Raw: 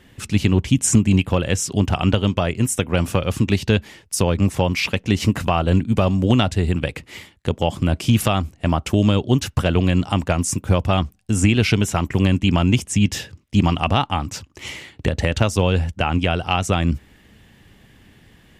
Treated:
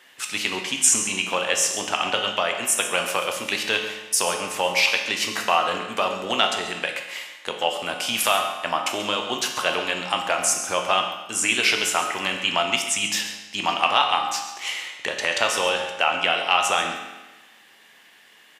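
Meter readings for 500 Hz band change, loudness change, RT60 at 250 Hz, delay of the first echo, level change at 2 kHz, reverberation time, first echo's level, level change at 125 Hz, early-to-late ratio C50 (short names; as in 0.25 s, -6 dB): -3.5 dB, -2.5 dB, 1.2 s, 0.135 s, +4.0 dB, 1.2 s, -12.5 dB, -27.0 dB, 5.0 dB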